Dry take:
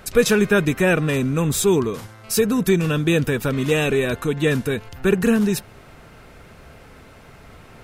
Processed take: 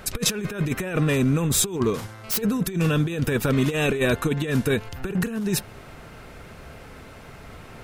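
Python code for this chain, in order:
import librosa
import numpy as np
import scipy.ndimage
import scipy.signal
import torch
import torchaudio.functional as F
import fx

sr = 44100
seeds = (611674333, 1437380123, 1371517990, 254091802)

y = fx.self_delay(x, sr, depth_ms=0.1, at=(1.76, 2.42))
y = fx.over_compress(y, sr, threshold_db=-21.0, ratio=-0.5)
y = y * librosa.db_to_amplitude(-1.0)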